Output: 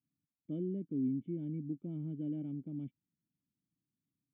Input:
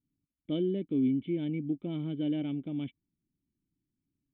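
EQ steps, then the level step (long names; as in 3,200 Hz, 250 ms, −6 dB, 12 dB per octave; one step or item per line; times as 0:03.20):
resonant band-pass 150 Hz, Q 1.2
low-shelf EQ 130 Hz −8.5 dB
0.0 dB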